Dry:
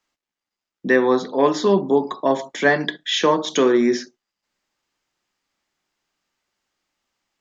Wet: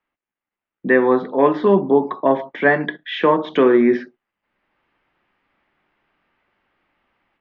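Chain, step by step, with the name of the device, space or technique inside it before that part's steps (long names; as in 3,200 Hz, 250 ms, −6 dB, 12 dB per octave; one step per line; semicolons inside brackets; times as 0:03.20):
action camera in a waterproof case (low-pass filter 2,600 Hz 24 dB per octave; automatic gain control gain up to 13 dB; level −1 dB; AAC 96 kbit/s 32,000 Hz)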